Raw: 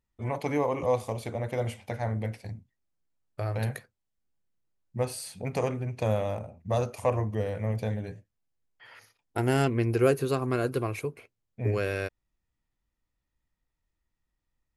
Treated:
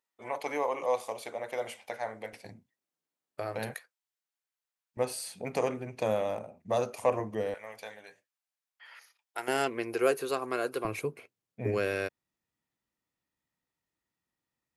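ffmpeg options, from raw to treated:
-af "asetnsamples=n=441:p=0,asendcmd='2.33 highpass f 260;3.74 highpass f 1000;4.97 highpass f 240;7.54 highpass f 940;9.48 highpass f 460;10.85 highpass f 160',highpass=530"

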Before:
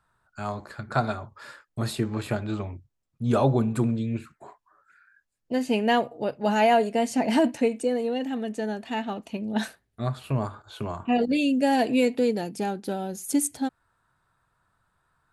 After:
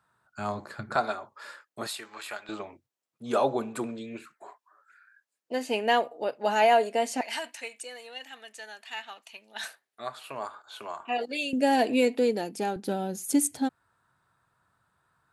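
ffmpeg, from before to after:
-af "asetnsamples=n=441:p=0,asendcmd='0.96 highpass f 400;1.87 highpass f 1100;2.49 highpass f 420;7.21 highpass f 1500;9.64 highpass f 690;11.53 highpass f 260;12.76 highpass f 83',highpass=120"

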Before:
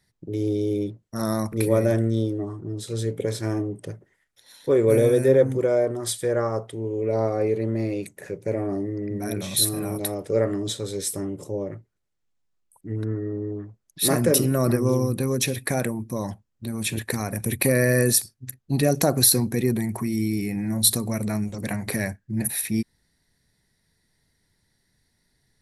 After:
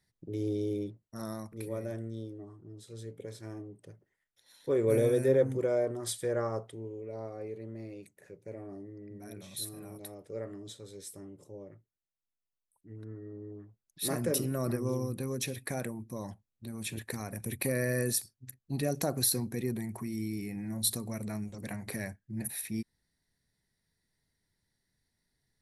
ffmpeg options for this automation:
-af "volume=2.37,afade=t=out:st=0.65:d=0.83:silence=0.354813,afade=t=in:st=3.87:d=1.08:silence=0.354813,afade=t=out:st=6.54:d=0.52:silence=0.334965,afade=t=in:st=12.99:d=1.29:silence=0.473151"

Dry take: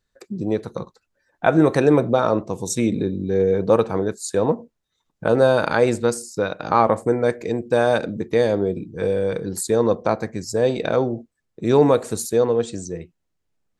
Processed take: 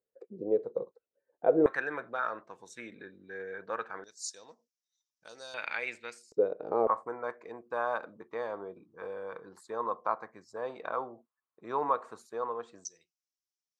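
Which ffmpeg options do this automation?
-af "asetnsamples=n=441:p=0,asendcmd='1.66 bandpass f 1600;4.04 bandpass f 5600;5.54 bandpass f 2300;6.32 bandpass f 440;6.87 bandpass f 1100;12.85 bandpass f 5600',bandpass=f=480:t=q:w=4.7:csg=0"

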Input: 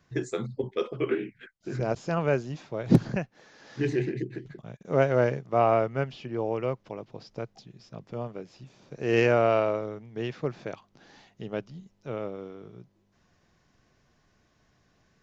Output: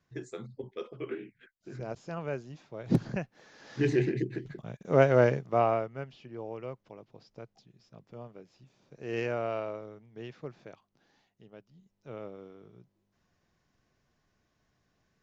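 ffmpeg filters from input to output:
-af "volume=4.22,afade=t=in:st=2.69:d=1.26:silence=0.281838,afade=t=out:st=5.34:d=0.55:silence=0.266073,afade=t=out:st=10.34:d=1.3:silence=0.354813,afade=t=in:st=11.64:d=0.54:silence=0.266073"

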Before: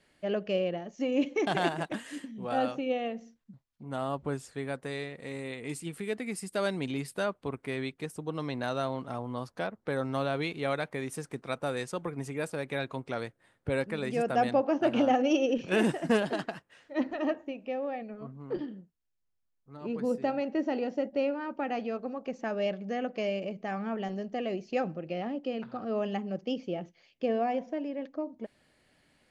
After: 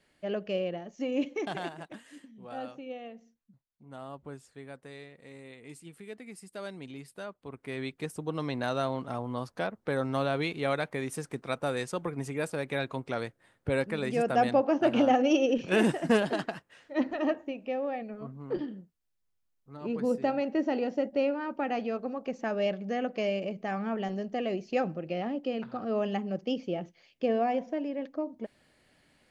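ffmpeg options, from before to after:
-af "volume=2.99,afade=t=out:st=1.18:d=0.53:silence=0.398107,afade=t=in:st=7.43:d=0.63:silence=0.266073"

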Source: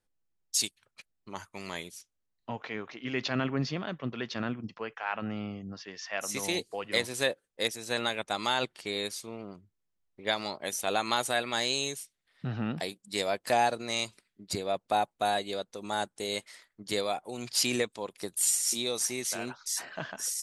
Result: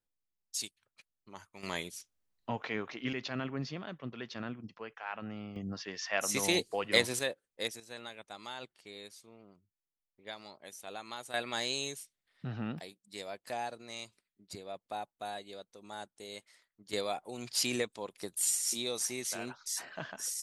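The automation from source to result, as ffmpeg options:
-af "asetnsamples=n=441:p=0,asendcmd='1.63 volume volume 1dB;3.13 volume volume -7dB;5.56 volume volume 2dB;7.19 volume volume -6dB;7.8 volume volume -15dB;11.34 volume volume -5dB;12.79 volume volume -12.5dB;16.93 volume volume -4dB',volume=0.355"

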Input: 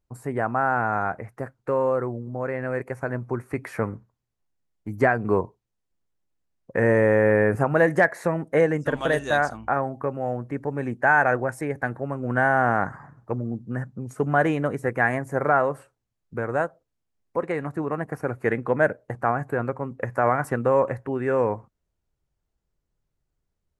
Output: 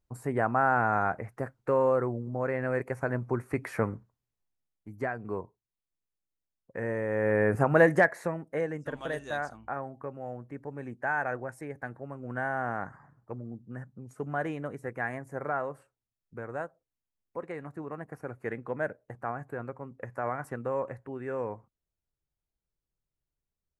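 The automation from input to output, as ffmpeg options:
-af "volume=3.16,afade=t=out:st=3.76:d=1.17:silence=0.281838,afade=t=in:st=7.07:d=0.73:silence=0.251189,afade=t=out:st=7.8:d=0.63:silence=0.298538"

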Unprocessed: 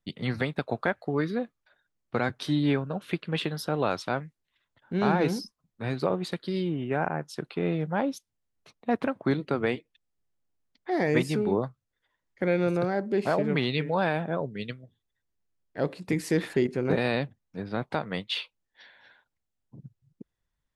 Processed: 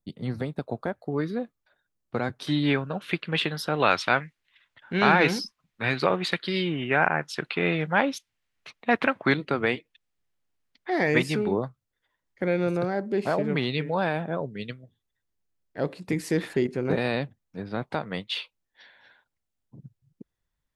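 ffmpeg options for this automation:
-af "asetnsamples=n=441:p=0,asendcmd='1.12 equalizer g -3.5;2.47 equalizer g 7.5;3.8 equalizer g 14.5;9.34 equalizer g 6.5;11.48 equalizer g 0',equalizer=f=2300:t=o:w=2.3:g=-11"

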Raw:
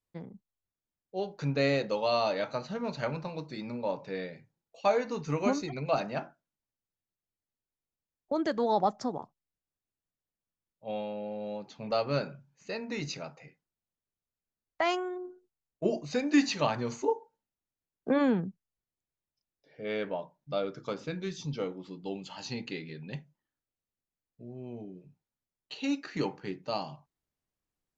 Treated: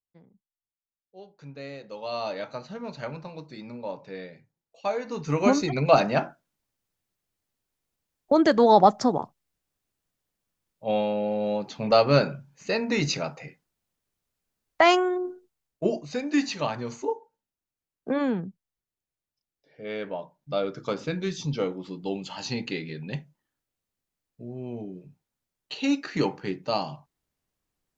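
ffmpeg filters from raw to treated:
-af "volume=7.08,afade=t=in:st=1.82:d=0.47:silence=0.298538,afade=t=in:st=5:d=0.79:silence=0.237137,afade=t=out:st=15.25:d=0.81:silence=0.298538,afade=t=in:st=20:d=0.97:silence=0.473151"

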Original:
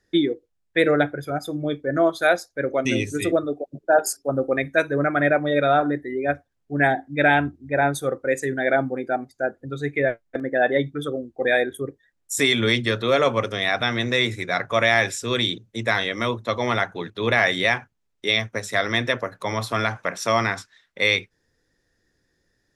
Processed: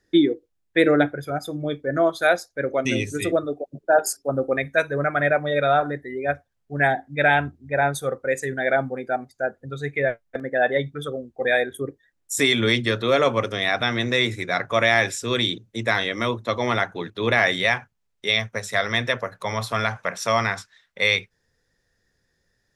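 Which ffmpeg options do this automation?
-af "asetnsamples=n=441:p=0,asendcmd='1.08 equalizer g -3;4.57 equalizer g -9.5;11.75 equalizer g 1;17.56 equalizer g -9.5',equalizer=f=310:t=o:w=0.47:g=4"

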